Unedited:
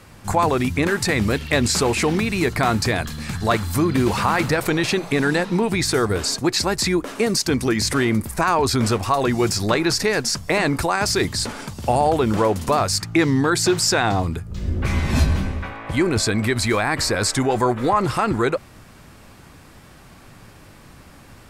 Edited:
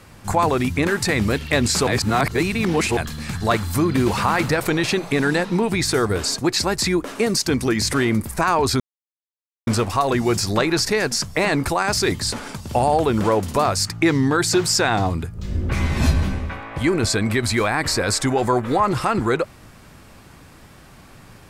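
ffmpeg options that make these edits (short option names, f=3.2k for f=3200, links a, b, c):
-filter_complex "[0:a]asplit=4[a][b][c][d];[a]atrim=end=1.872[e];[b]atrim=start=1.868:end=2.972,asetpts=PTS-STARTPTS,areverse[f];[c]atrim=start=2.968:end=8.8,asetpts=PTS-STARTPTS,afade=t=out:st=5.828:d=0.004:c=hsin,apad=pad_dur=0.87[g];[d]atrim=start=8.8,asetpts=PTS-STARTPTS,afade=t=in:d=0.004:c=hsin[h];[e][f]acrossfade=d=0.004:c1=hsin:c2=hsin[i];[g][h]concat=n=2:v=0:a=1[j];[i][j]acrossfade=d=0.004:c1=hsin:c2=hsin"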